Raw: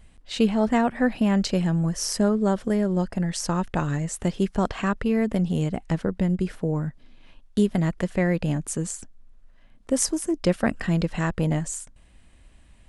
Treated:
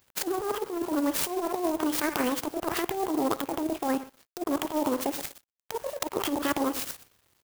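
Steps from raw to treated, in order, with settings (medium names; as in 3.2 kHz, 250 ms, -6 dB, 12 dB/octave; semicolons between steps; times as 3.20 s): backward echo that repeats 106 ms, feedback 42%, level -13 dB; low-pass that closes with the level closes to 400 Hz, closed at -17.5 dBFS; high-pass 60 Hz 12 dB/octave; tone controls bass -8 dB, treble +14 dB; compressor with a negative ratio -29 dBFS, ratio -0.5; feedback delay 92 ms, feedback 43%, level -18.5 dB; crossover distortion -50.5 dBFS; speed mistake 45 rpm record played at 78 rpm; sampling jitter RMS 0.047 ms; trim +3 dB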